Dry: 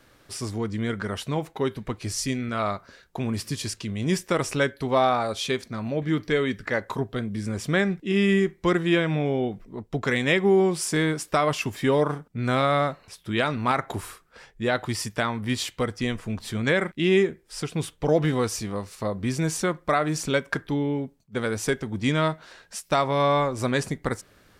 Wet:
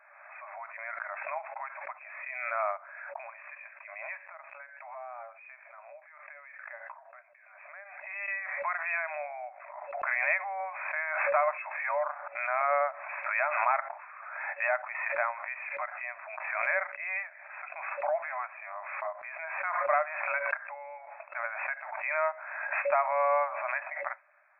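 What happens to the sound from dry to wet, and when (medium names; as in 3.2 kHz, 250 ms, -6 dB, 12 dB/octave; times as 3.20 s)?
4.21–8.28 s: compression 5:1, threshold -37 dBFS
whole clip: FFT band-pass 560–2600 Hz; swell ahead of each attack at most 38 dB/s; trim -3.5 dB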